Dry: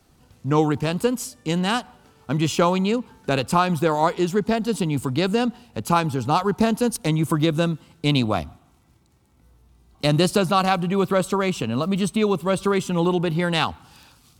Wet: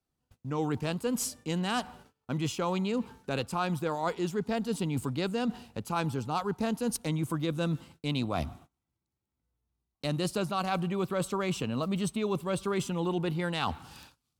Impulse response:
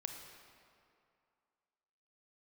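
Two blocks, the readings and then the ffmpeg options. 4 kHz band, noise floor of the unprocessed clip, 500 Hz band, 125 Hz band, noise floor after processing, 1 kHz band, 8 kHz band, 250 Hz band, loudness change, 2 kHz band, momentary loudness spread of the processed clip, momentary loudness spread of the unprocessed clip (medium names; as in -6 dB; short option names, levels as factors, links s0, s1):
-10.0 dB, -58 dBFS, -10.5 dB, -9.5 dB, under -85 dBFS, -11.0 dB, -6.0 dB, -9.5 dB, -10.0 dB, -10.0 dB, 4 LU, 6 LU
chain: -af "agate=range=0.0447:threshold=0.00355:ratio=16:detection=peak,areverse,acompressor=threshold=0.0398:ratio=6,areverse"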